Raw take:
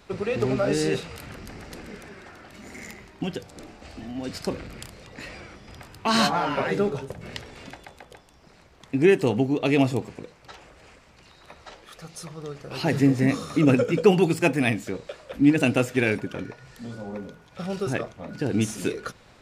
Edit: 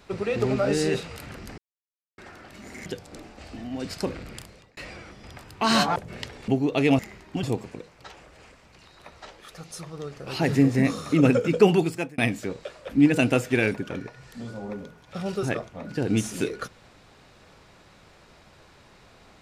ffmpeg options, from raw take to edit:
ffmpeg -i in.wav -filter_complex "[0:a]asplit=10[link_01][link_02][link_03][link_04][link_05][link_06][link_07][link_08][link_09][link_10];[link_01]atrim=end=1.58,asetpts=PTS-STARTPTS,afade=type=out:start_time=1.576:duration=0.004:curve=hsin[link_11];[link_02]atrim=start=1.58:end=2.18,asetpts=PTS-STARTPTS,volume=0[link_12];[link_03]atrim=start=2.18:end=2.862,asetpts=PTS-STARTPTS,afade=type=in:duration=0.004:curve=hsin[link_13];[link_04]atrim=start=3.298:end=5.21,asetpts=PTS-STARTPTS,afade=type=out:start_time=1.372:duration=0.54:curve=qsin[link_14];[link_05]atrim=start=5.21:end=6.402,asetpts=PTS-STARTPTS,afade=type=in:duration=0.004:curve=hsin[link_15];[link_06]atrim=start=7.088:end=7.612[link_16];[link_07]atrim=start=9.358:end=9.872[link_17];[link_08]atrim=start=2.858:end=3.302[link_18];[link_09]atrim=start=9.868:end=14.62,asetpts=PTS-STARTPTS,afade=type=out:start_time=4.302:duration=0.45[link_19];[link_10]atrim=start=14.62,asetpts=PTS-STARTPTS,afade=type=in:duration=0.004:curve=hsin[link_20];[link_11][link_12][link_13]concat=n=3:v=0:a=1[link_21];[link_14][link_15]concat=n=2:v=0:a=1[link_22];[link_21][link_22]acrossfade=duration=0.004:curve1=hsin:curve2=hsin[link_23];[link_23][link_16]acrossfade=duration=0.004:curve1=hsin:curve2=hsin[link_24];[link_24][link_17]acrossfade=duration=0.004:curve1=hsin:curve2=hsin[link_25];[link_25][link_18]acrossfade=duration=0.004:curve1=hsin:curve2=hsin[link_26];[link_19][link_20]concat=n=2:v=0:a=1[link_27];[link_26][link_27]acrossfade=duration=0.004:curve1=hsin:curve2=hsin" out.wav

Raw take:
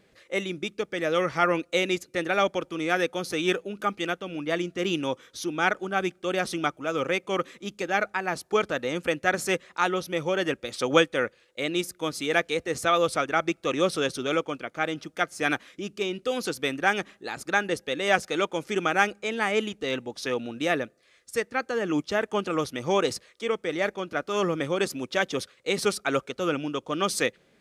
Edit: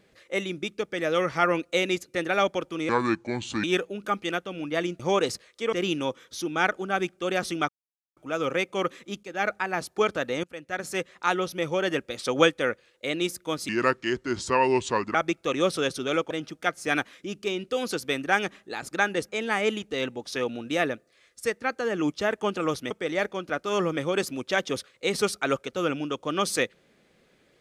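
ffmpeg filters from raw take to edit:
ffmpeg -i in.wav -filter_complex "[0:a]asplit=13[link_01][link_02][link_03][link_04][link_05][link_06][link_07][link_08][link_09][link_10][link_11][link_12][link_13];[link_01]atrim=end=2.894[link_14];[link_02]atrim=start=2.89:end=3.39,asetpts=PTS-STARTPTS,asetrate=29547,aresample=44100,atrim=end_sample=32910,asetpts=PTS-STARTPTS[link_15];[link_03]atrim=start=3.386:end=4.752[link_16];[link_04]atrim=start=22.808:end=23.542[link_17];[link_05]atrim=start=4.748:end=6.71,asetpts=PTS-STARTPTS,afade=type=out:start_time=1.958:duration=0.004:curve=hsin,apad=pad_dur=0.48[link_18];[link_06]atrim=start=6.71:end=7.78,asetpts=PTS-STARTPTS,afade=type=in:duration=0.004:curve=hsin,afade=type=out:start_time=1.066:duration=0.004:curve=hsin:silence=0.211349[link_19];[link_07]atrim=start=7.78:end=8.98,asetpts=PTS-STARTPTS,afade=type=in:duration=0.25:silence=0.211349,afade=type=out:start_time=1.196:duration=0.004:curve=hsin:silence=0.0794328[link_20];[link_08]atrim=start=8.98:end=12.234,asetpts=PTS-STARTPTS,afade=type=in:duration=0.86:silence=0.0794328[link_21];[link_09]atrim=start=12.23:end=13.34,asetpts=PTS-STARTPTS,asetrate=33516,aresample=44100,atrim=end_sample=64409,asetpts=PTS-STARTPTS[link_22];[link_10]atrim=start=13.336:end=14.502[link_23];[link_11]atrim=start=14.848:end=17.832[link_24];[link_12]atrim=start=19.188:end=22.812[link_25];[link_13]atrim=start=23.538[link_26];[link_14][link_15]acrossfade=duration=0.004:curve1=hsin:curve2=hsin[link_27];[link_27][link_16]acrossfade=duration=0.004:curve1=hsin:curve2=hsin[link_28];[link_28][link_17]acrossfade=duration=0.004:curve1=hsin:curve2=hsin[link_29];[link_18][link_19][link_20][link_21]concat=n=4:v=0:a=1[link_30];[link_29][link_30]acrossfade=duration=0.004:curve1=hsin:curve2=hsin[link_31];[link_31][link_22]acrossfade=duration=0.004:curve1=hsin:curve2=hsin[link_32];[link_32][link_23]acrossfade=duration=0.004:curve1=hsin:curve2=hsin[link_33];[link_33][link_24]acrossfade=duration=0.004:curve1=hsin:curve2=hsin[link_34];[link_34][link_25]acrossfade=duration=0.004:curve1=hsin:curve2=hsin[link_35];[link_35][link_26]acrossfade=duration=0.004:curve1=hsin:curve2=hsin" out.wav

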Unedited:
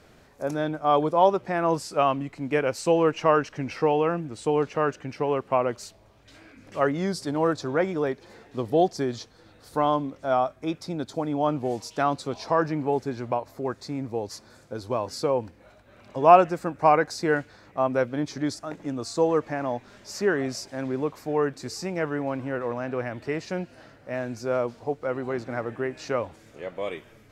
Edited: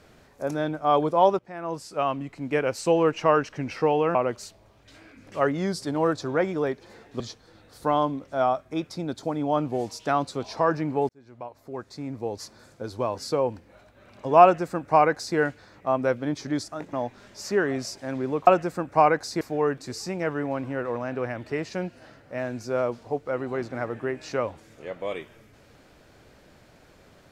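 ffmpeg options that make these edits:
ffmpeg -i in.wav -filter_complex "[0:a]asplit=8[link_01][link_02][link_03][link_04][link_05][link_06][link_07][link_08];[link_01]atrim=end=1.39,asetpts=PTS-STARTPTS,afade=type=out:start_time=1.386:duration=0.004:curve=hsin:silence=0.141254[link_09];[link_02]atrim=start=1.39:end=4.152,asetpts=PTS-STARTPTS,afade=type=in:duration=1.58:curve=qsin:silence=0.141254[link_10];[link_03]atrim=start=5.548:end=8.602[link_11];[link_04]atrim=start=9.108:end=13,asetpts=PTS-STARTPTS,afade=type=out:start_time=3.888:duration=0.004:curve=hsin[link_12];[link_05]atrim=start=13:end=18.842,asetpts=PTS-STARTPTS,afade=type=in:duration=1.33[link_13];[link_06]atrim=start=19.628:end=21.172[link_14];[link_07]atrim=start=16.338:end=17.282[link_15];[link_08]atrim=start=21.168[link_16];[link_09][link_10]concat=n=2:v=0:a=1[link_17];[link_17][link_11]acrossfade=duration=0.004:curve1=hsin:curve2=hsin[link_18];[link_12][link_13]concat=n=2:v=0:a=1[link_19];[link_18][link_19]acrossfade=duration=0.004:curve1=hsin:curve2=hsin[link_20];[link_20][link_14]acrossfade=duration=0.004:curve1=hsin:curve2=hsin[link_21];[link_21][link_15]acrossfade=duration=0.004:curve1=hsin:curve2=hsin[link_22];[link_22][link_16]acrossfade=duration=0.004:curve1=hsin:curve2=hsin" out.wav

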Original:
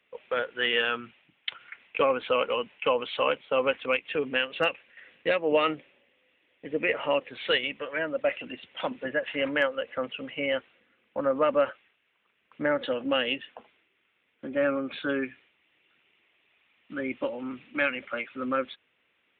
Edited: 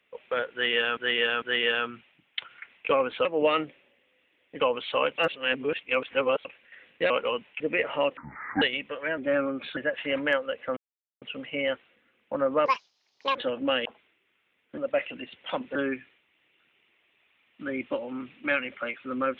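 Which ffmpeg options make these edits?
ffmpeg -i in.wav -filter_complex "[0:a]asplit=19[link_01][link_02][link_03][link_04][link_05][link_06][link_07][link_08][link_09][link_10][link_11][link_12][link_13][link_14][link_15][link_16][link_17][link_18][link_19];[link_01]atrim=end=0.972[link_20];[link_02]atrim=start=0.518:end=0.972[link_21];[link_03]atrim=start=0.518:end=2.352[link_22];[link_04]atrim=start=5.348:end=6.702[link_23];[link_05]atrim=start=2.848:end=3.432[link_24];[link_06]atrim=start=3.428:end=4.702,asetpts=PTS-STARTPTS,areverse[link_25];[link_07]atrim=start=4.698:end=5.352[link_26];[link_08]atrim=start=2.348:end=2.852[link_27];[link_09]atrim=start=6.698:end=7.274[link_28];[link_10]atrim=start=7.27:end=7.52,asetpts=PTS-STARTPTS,asetrate=24696,aresample=44100,atrim=end_sample=19687,asetpts=PTS-STARTPTS[link_29];[link_11]atrim=start=7.516:end=8.082[link_30];[link_12]atrim=start=14.468:end=15.062[link_31];[link_13]atrim=start=9.058:end=10.06,asetpts=PTS-STARTPTS,afade=type=out:start_time=0.998:duration=0.004:curve=hsin,apad=pad_dur=0.45[link_32];[link_14]atrim=start=10.06:end=11.504,asetpts=PTS-STARTPTS,afade=type=in:duration=0.004:curve=hsin[link_33];[link_15]atrim=start=11.5:end=12.79,asetpts=PTS-STARTPTS,asetrate=81585,aresample=44100[link_34];[link_16]atrim=start=12.786:end=13.292[link_35];[link_17]atrim=start=13.548:end=14.472[link_36];[link_18]atrim=start=8.078:end=9.062[link_37];[link_19]atrim=start=15.058[link_38];[link_20][link_21]acrossfade=duration=0.004:curve1=hsin:curve2=hsin[link_39];[link_39][link_22]acrossfade=duration=0.004:curve1=hsin:curve2=hsin[link_40];[link_40][link_23]acrossfade=duration=0.004:curve1=hsin:curve2=hsin[link_41];[link_41][link_24]acrossfade=duration=0.004:curve1=hsin:curve2=hsin[link_42];[link_42][link_25]acrossfade=duration=0.004:curve1=hsin:curve2=hsin[link_43];[link_43][link_26]acrossfade=duration=0.004:curve1=hsin:curve2=hsin[link_44];[link_44][link_27]acrossfade=duration=0.004:curve1=hsin:curve2=hsin[link_45];[link_45][link_28]acrossfade=duration=0.004:curve1=hsin:curve2=hsin[link_46];[link_46][link_29]acrossfade=duration=0.004:curve1=hsin:curve2=hsin[link_47];[link_47][link_30]acrossfade=duration=0.004:curve1=hsin:curve2=hsin[link_48];[link_48][link_31]acrossfade=duration=0.004:curve1=hsin:curve2=hsin[link_49];[link_32][link_33]concat=n=2:v=0:a=1[link_50];[link_49][link_50]acrossfade=duration=0.004:curve1=hsin:curve2=hsin[link_51];[link_51][link_34]acrossfade=duration=0.004:curve1=hsin:curve2=hsin[link_52];[link_52][link_35]acrossfade=duration=0.004:curve1=hsin:curve2=hsin[link_53];[link_53][link_36]acrossfade=duration=0.004:curve1=hsin:curve2=hsin[link_54];[link_54][link_37]acrossfade=duration=0.004:curve1=hsin:curve2=hsin[link_55];[link_55][link_38]acrossfade=duration=0.004:curve1=hsin:curve2=hsin" out.wav

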